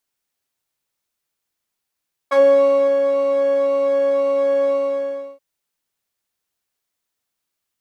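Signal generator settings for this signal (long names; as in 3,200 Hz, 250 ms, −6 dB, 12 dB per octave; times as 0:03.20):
subtractive patch with pulse-width modulation C#5, interval +12 semitones, detune 14 cents, sub −10.5 dB, noise −11.5 dB, filter bandpass, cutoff 470 Hz, Q 1.9, filter envelope 1.5 octaves, filter decay 0.09 s, filter sustain 5%, attack 17 ms, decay 0.64 s, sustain −6.5 dB, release 0.69 s, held 2.39 s, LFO 1.9 Hz, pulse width 38%, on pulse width 6%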